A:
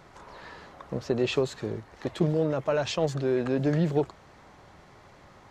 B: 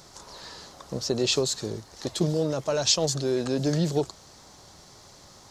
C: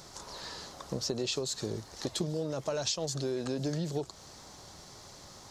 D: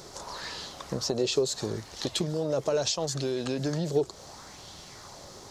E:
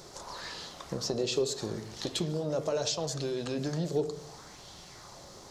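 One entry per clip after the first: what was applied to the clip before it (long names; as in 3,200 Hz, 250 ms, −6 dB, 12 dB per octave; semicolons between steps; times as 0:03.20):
high shelf with overshoot 3,400 Hz +14 dB, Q 1.5
downward compressor 6 to 1, threshold −30 dBFS, peak gain reduction 12 dB
auto-filter bell 0.74 Hz 400–3,300 Hz +8 dB; level +3 dB
convolution reverb RT60 0.80 s, pre-delay 6 ms, DRR 9 dB; level −3.5 dB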